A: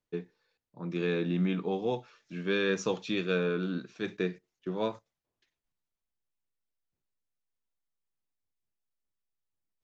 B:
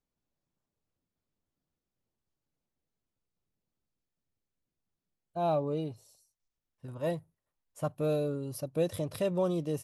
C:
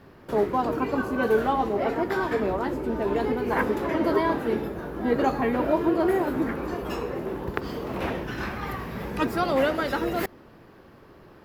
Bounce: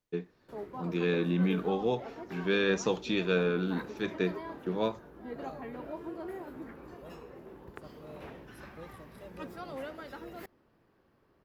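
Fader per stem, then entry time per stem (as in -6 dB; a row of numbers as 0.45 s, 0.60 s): +1.0 dB, -19.5 dB, -18.0 dB; 0.00 s, 0.00 s, 0.20 s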